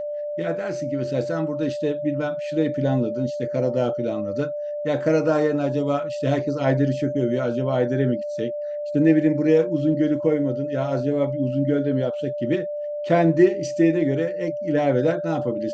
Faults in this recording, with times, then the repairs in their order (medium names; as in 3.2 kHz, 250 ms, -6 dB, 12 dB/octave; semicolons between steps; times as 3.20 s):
whine 590 Hz -26 dBFS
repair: band-stop 590 Hz, Q 30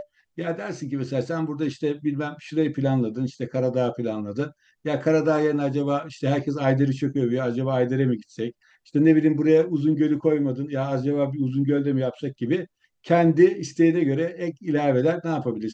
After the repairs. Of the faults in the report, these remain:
nothing left